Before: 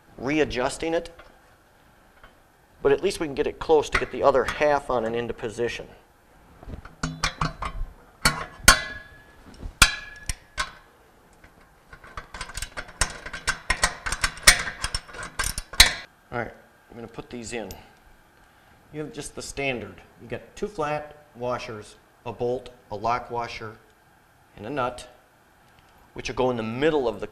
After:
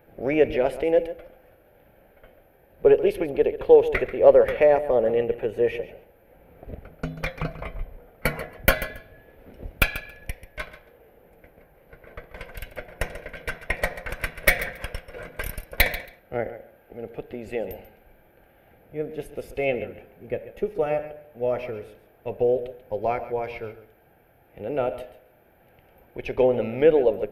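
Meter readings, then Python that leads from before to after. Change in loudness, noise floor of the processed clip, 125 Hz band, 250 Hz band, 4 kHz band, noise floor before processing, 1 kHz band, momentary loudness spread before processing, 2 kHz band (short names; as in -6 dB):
+0.5 dB, -58 dBFS, -1.0 dB, 0.0 dB, -12.0 dB, -57 dBFS, -5.0 dB, 23 LU, -3.5 dB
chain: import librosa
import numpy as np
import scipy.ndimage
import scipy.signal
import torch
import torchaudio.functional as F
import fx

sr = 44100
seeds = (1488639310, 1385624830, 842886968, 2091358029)

y = fx.curve_eq(x, sr, hz=(300.0, 540.0, 1100.0, 2300.0, 4400.0, 7900.0, 13000.0), db=(0, 9, -11, 1, -16, -22, 6))
y = fx.echo_feedback(y, sr, ms=138, feedback_pct=15, wet_db=-14)
y = y * 10.0 ** (-1.0 / 20.0)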